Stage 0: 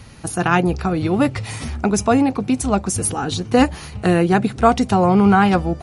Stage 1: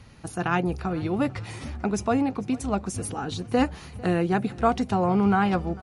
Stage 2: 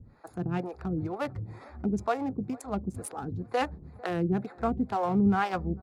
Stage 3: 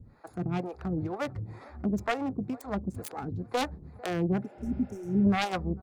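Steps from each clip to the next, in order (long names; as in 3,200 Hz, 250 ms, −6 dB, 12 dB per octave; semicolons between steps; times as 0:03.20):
high-shelf EQ 7,400 Hz −9 dB; repeating echo 448 ms, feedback 54%, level −22 dB; level −8 dB
adaptive Wiener filter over 15 samples; two-band tremolo in antiphase 2.1 Hz, depth 100%, crossover 440 Hz
phase distortion by the signal itself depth 0.31 ms; healed spectral selection 0:04.46–0:05.22, 440–5,300 Hz before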